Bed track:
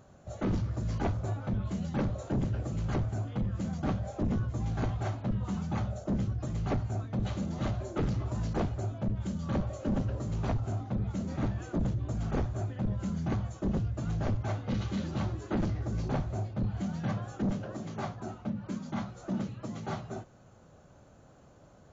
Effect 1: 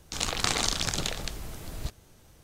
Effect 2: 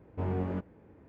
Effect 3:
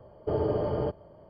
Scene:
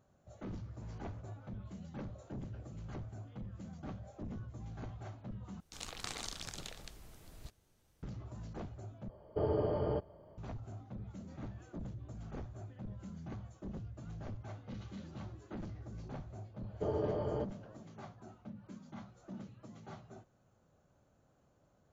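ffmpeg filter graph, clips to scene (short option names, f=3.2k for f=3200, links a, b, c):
-filter_complex "[3:a]asplit=2[a][b];[0:a]volume=-14dB[c];[2:a]highpass=f=1.1k:p=1[d];[a]equalizer=f=66:t=o:w=0.77:g=3[e];[c]asplit=3[f][g][h];[f]atrim=end=5.604[i];[1:a]atrim=end=2.43,asetpts=PTS-STARTPTS,volume=-16dB[j];[g]atrim=start=8.026:end=9.094[k];[e]atrim=end=1.29,asetpts=PTS-STARTPTS,volume=-5.5dB[l];[h]atrim=start=10.376[m];[d]atrim=end=1.08,asetpts=PTS-STARTPTS,volume=-17dB,afade=t=in:d=0.004:c=hsin,afade=t=out:st=1.076:d=0.004:c=hsin,adelay=610[n];[b]atrim=end=1.29,asetpts=PTS-STARTPTS,volume=-7.5dB,afade=t=in:d=0.004:c=hsin,afade=t=out:st=1.286:d=0.004:c=hsin,adelay=16540[o];[i][j]acrossfade=d=0.004:c1=hsin:c2=hsin[p];[p][k]acrossfade=d=0.004:c1=hsin:c2=hsin[q];[q][l]acrossfade=d=0.004:c1=hsin:c2=hsin[r];[r][m]acrossfade=d=0.004:c1=hsin:c2=hsin[s];[s][n][o]amix=inputs=3:normalize=0"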